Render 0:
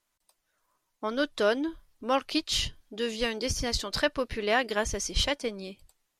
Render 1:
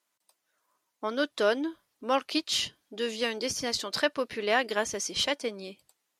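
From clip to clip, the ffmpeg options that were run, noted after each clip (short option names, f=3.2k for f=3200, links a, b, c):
-af "highpass=210"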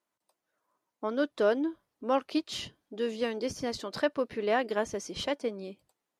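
-af "tiltshelf=f=1.4k:g=6.5,volume=-4.5dB"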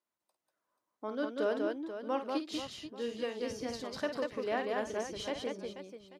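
-af "aecho=1:1:51|191|485|838:0.355|0.668|0.299|0.112,volume=-7dB"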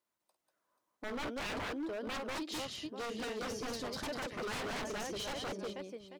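-af "aeval=exprs='0.015*(abs(mod(val(0)/0.015+3,4)-2)-1)':c=same,volume=2.5dB"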